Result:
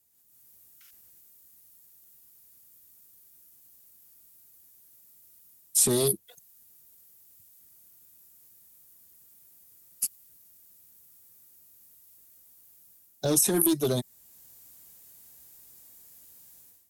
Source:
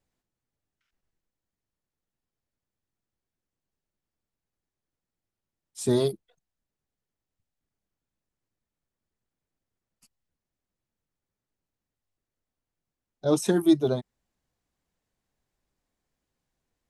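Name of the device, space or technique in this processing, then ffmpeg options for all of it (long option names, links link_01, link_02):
FM broadcast chain: -filter_complex "[0:a]highpass=57,dynaudnorm=framelen=120:gausssize=5:maxgain=16.5dB,acrossover=split=440|3300[link_01][link_02][link_03];[link_01]acompressor=threshold=-19dB:ratio=4[link_04];[link_02]acompressor=threshold=-26dB:ratio=4[link_05];[link_03]acompressor=threshold=-40dB:ratio=4[link_06];[link_04][link_05][link_06]amix=inputs=3:normalize=0,aemphasis=mode=production:type=50fm,alimiter=limit=-13.5dB:level=0:latency=1:release=60,asoftclip=type=hard:threshold=-17dB,lowpass=frequency=15000:width=0.5412,lowpass=frequency=15000:width=1.3066,aemphasis=mode=production:type=50fm,volume=-2.5dB"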